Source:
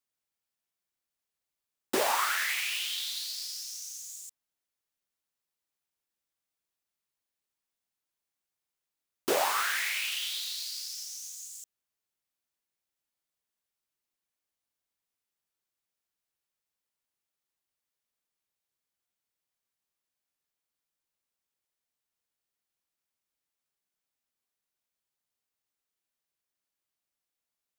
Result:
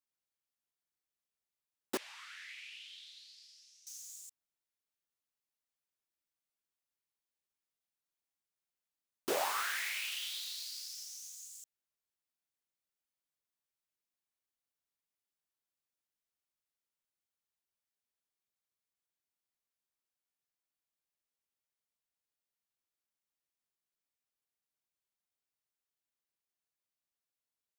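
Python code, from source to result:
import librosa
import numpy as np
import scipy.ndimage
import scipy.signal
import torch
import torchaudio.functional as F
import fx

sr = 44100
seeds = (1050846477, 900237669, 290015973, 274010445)

y = fx.ladder_bandpass(x, sr, hz=3100.0, resonance_pct=20, at=(1.97, 3.87))
y = y * 10.0 ** (-6.5 / 20.0)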